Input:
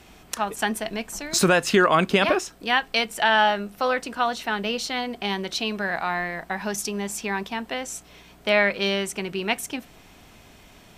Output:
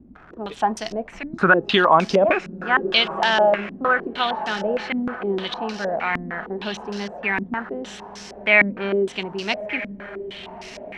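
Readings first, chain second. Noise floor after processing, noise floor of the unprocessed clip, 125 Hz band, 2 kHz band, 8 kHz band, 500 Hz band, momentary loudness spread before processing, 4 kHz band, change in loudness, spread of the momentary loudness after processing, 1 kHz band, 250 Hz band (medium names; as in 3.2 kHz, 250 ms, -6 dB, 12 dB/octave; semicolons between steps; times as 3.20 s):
-42 dBFS, -51 dBFS, +0.5 dB, +3.0 dB, -13.0 dB, +3.0 dB, 12 LU, +1.5 dB, +2.5 dB, 18 LU, +2.5 dB, +1.5 dB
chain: crackle 300 per s -31 dBFS; wow and flutter 21 cents; on a send: echo that smears into a reverb 1233 ms, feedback 43%, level -13 dB; on the sum: step-sequenced low-pass 6.5 Hz 250–5400 Hz; trim -1 dB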